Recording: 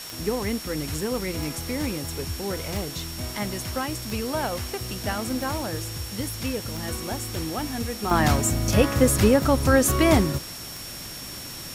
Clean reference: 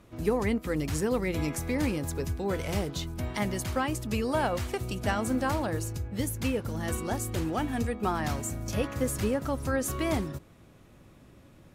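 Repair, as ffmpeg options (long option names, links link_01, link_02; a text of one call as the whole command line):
ffmpeg -i in.wav -af "adeclick=threshold=4,bandreject=frequency=5500:width=30,afwtdn=0.013,asetnsamples=nb_out_samples=441:pad=0,asendcmd='8.11 volume volume -10.5dB',volume=0dB" out.wav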